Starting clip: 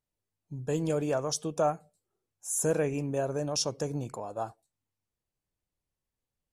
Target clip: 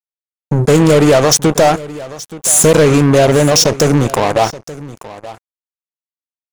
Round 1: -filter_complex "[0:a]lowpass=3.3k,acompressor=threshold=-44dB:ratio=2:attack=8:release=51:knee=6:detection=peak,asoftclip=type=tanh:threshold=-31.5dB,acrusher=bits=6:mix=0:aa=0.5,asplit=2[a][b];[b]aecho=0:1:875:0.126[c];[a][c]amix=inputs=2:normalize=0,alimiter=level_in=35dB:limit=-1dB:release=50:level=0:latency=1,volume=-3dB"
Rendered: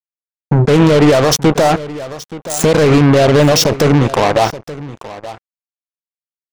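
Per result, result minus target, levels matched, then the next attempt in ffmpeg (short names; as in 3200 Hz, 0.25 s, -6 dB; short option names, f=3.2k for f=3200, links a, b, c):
8000 Hz band -7.0 dB; soft clip: distortion -8 dB
-filter_complex "[0:a]lowpass=13k,acompressor=threshold=-44dB:ratio=2:attack=8:release=51:knee=6:detection=peak,asoftclip=type=tanh:threshold=-31.5dB,acrusher=bits=6:mix=0:aa=0.5,asplit=2[a][b];[b]aecho=0:1:875:0.126[c];[a][c]amix=inputs=2:normalize=0,alimiter=level_in=35dB:limit=-1dB:release=50:level=0:latency=1,volume=-3dB"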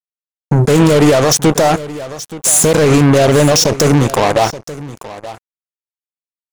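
soft clip: distortion -8 dB
-filter_complex "[0:a]lowpass=13k,acompressor=threshold=-44dB:ratio=2:attack=8:release=51:knee=6:detection=peak,asoftclip=type=tanh:threshold=-38.5dB,acrusher=bits=6:mix=0:aa=0.5,asplit=2[a][b];[b]aecho=0:1:875:0.126[c];[a][c]amix=inputs=2:normalize=0,alimiter=level_in=35dB:limit=-1dB:release=50:level=0:latency=1,volume=-3dB"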